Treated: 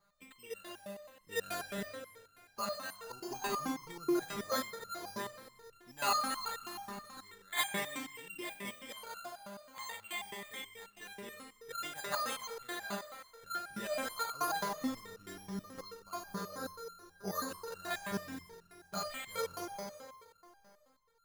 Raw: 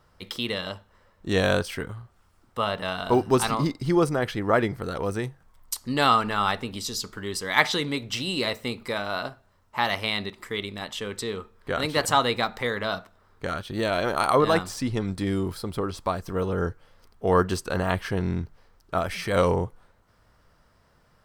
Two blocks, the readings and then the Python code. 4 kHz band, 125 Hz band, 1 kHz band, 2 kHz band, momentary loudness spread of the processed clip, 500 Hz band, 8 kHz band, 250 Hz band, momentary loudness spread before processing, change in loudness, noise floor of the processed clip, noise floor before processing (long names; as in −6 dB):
−12.5 dB, −23.0 dB, −12.5 dB, −13.0 dB, 15 LU, −16.5 dB, −7.0 dB, −14.5 dB, 12 LU, −13.5 dB, −67 dBFS, −62 dBFS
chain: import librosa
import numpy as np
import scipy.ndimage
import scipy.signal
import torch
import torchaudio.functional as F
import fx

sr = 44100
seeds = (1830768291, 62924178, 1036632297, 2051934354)

y = fx.graphic_eq_15(x, sr, hz=(160, 400, 4000), db=(7, -3, 6))
y = fx.rev_schroeder(y, sr, rt60_s=2.5, comb_ms=31, drr_db=4.5)
y = np.repeat(scipy.signal.resample_poly(y, 1, 8), 8)[:len(y)]
y = fx.low_shelf(y, sr, hz=270.0, db=-11.0)
y = fx.resonator_held(y, sr, hz=9.3, low_hz=200.0, high_hz=1400.0)
y = y * 10.0 ** (4.0 / 20.0)